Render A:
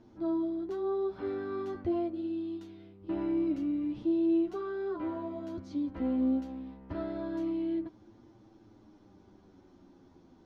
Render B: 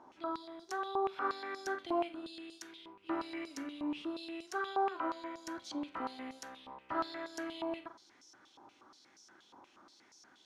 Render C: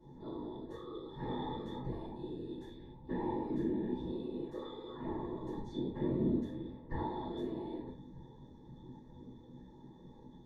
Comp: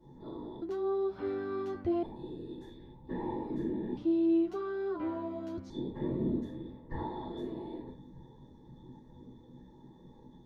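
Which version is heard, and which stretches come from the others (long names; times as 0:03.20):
C
0:00.62–0:02.03: punch in from A
0:03.97–0:05.70: punch in from A
not used: B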